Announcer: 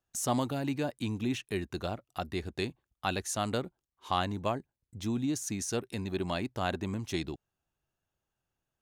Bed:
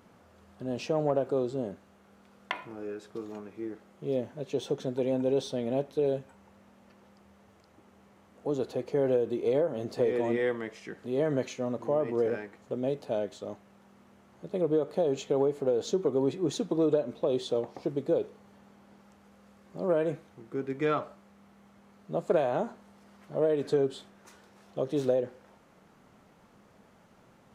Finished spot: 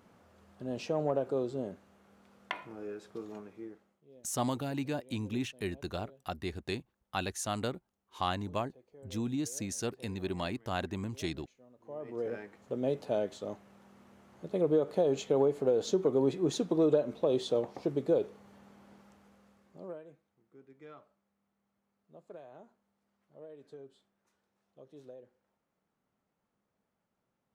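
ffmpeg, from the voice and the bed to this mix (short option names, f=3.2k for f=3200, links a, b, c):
-filter_complex "[0:a]adelay=4100,volume=-2.5dB[a];[1:a]volume=23.5dB,afade=t=out:st=3.38:d=0.64:silence=0.0630957,afade=t=in:st=11.78:d=1.17:silence=0.0446684,afade=t=out:st=18.9:d=1.12:silence=0.0707946[b];[a][b]amix=inputs=2:normalize=0"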